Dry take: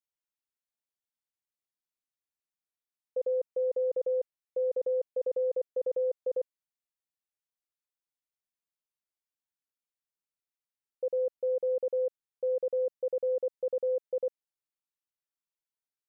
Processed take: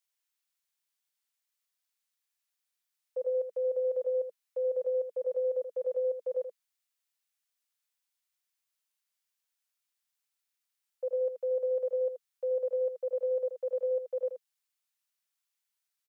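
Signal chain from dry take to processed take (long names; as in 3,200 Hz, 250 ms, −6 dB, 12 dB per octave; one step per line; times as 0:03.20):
elliptic band-stop filter 200–470 Hz
tilt shelving filter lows −9 dB, about 650 Hz
single-tap delay 80 ms −9 dB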